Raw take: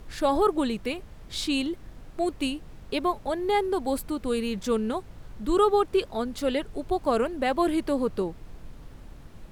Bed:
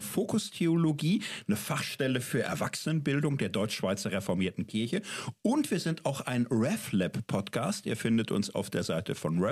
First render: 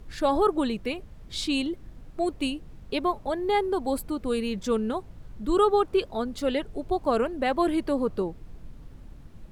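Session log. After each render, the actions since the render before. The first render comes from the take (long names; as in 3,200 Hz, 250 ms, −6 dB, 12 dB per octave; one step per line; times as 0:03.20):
broadband denoise 6 dB, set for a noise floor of −46 dBFS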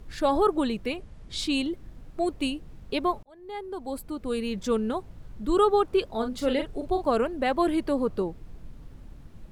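0:00.96–0:01.39: Butterworth low-pass 11,000 Hz
0:03.23–0:04.64: fade in
0:06.12–0:07.08: double-tracking delay 40 ms −7 dB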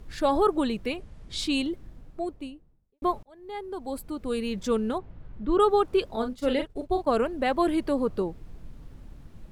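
0:01.61–0:03.02: fade out and dull
0:04.98–0:05.60: low-pass filter 2,600 Hz
0:06.16–0:07.23: downward expander −30 dBFS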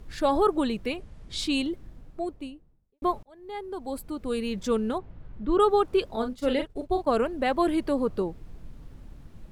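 no processing that can be heard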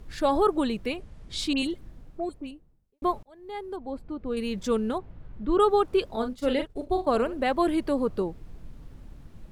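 0:01.53–0:02.51: all-pass dispersion highs, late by 56 ms, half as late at 2,700 Hz
0:03.76–0:04.37: head-to-tape spacing loss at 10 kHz 28 dB
0:06.80–0:07.44: flutter between parallel walls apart 11.5 metres, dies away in 0.24 s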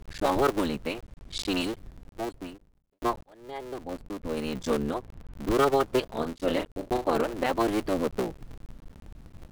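sub-harmonics by changed cycles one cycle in 3, muted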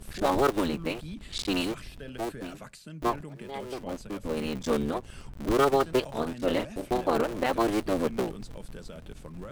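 mix in bed −13.5 dB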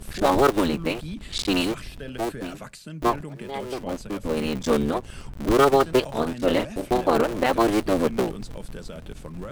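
level +5.5 dB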